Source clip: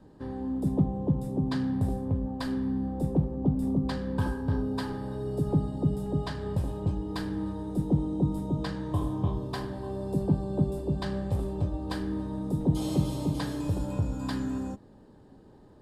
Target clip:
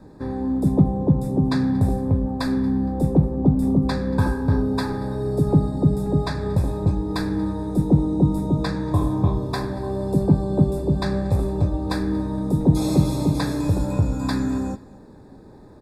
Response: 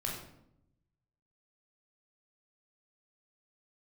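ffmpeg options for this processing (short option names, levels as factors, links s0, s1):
-af "asuperstop=centerf=3000:order=12:qfactor=4.6,aecho=1:1:232|464:0.075|0.0247,volume=2.66"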